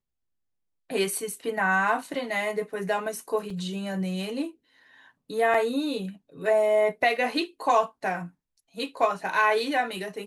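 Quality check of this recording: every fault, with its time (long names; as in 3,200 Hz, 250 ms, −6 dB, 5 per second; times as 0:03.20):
0:03.50: drop-out 3.6 ms
0:05.54: drop-out 4.1 ms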